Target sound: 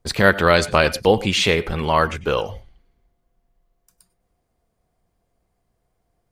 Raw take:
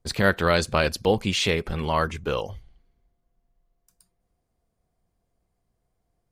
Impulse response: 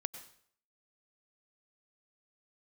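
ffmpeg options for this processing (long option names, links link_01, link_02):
-filter_complex "[0:a]asplit=2[link_01][link_02];[link_02]bass=frequency=250:gain=-7,treble=frequency=4000:gain=-14[link_03];[1:a]atrim=start_sample=2205,afade=type=out:start_time=0.17:duration=0.01,atrim=end_sample=7938,highshelf=frequency=4900:gain=11[link_04];[link_03][link_04]afir=irnorm=-1:irlink=0,volume=1.5dB[link_05];[link_01][link_05]amix=inputs=2:normalize=0"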